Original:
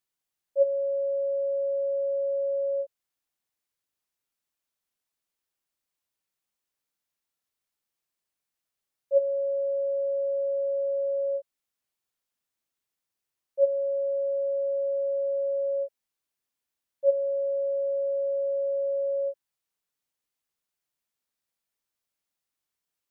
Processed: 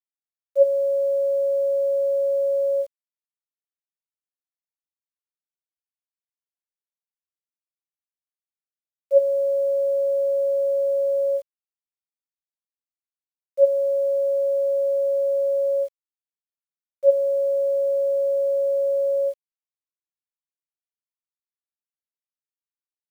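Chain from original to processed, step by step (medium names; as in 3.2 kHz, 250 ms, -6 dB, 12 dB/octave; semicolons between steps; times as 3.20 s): spectral gate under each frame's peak -30 dB strong; bit crusher 10-bit; trim +6 dB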